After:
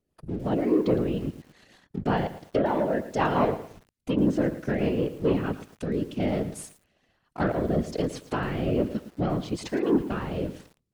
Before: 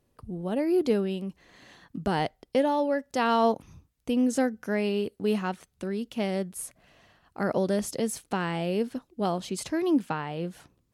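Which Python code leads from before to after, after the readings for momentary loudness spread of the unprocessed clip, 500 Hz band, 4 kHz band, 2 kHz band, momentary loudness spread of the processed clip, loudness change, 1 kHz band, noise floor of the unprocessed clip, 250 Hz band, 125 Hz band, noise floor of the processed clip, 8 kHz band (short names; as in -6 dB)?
11 LU, +1.0 dB, -3.5 dB, -0.5 dB, 12 LU, +1.0 dB, -1.0 dB, -72 dBFS, +1.5 dB, +6.0 dB, -76 dBFS, -7.0 dB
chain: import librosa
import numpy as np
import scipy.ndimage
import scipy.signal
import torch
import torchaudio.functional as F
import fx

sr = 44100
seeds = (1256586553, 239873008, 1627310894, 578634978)

y = fx.leveller(x, sr, passes=2)
y = fx.env_lowpass_down(y, sr, base_hz=2500.0, full_db=-17.5)
y = fx.rotary_switch(y, sr, hz=5.5, then_hz=1.2, switch_at_s=4.84)
y = fx.whisperise(y, sr, seeds[0])
y = fx.echo_crushed(y, sr, ms=111, feedback_pct=35, bits=7, wet_db=-13)
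y = F.gain(torch.from_numpy(y), -2.5).numpy()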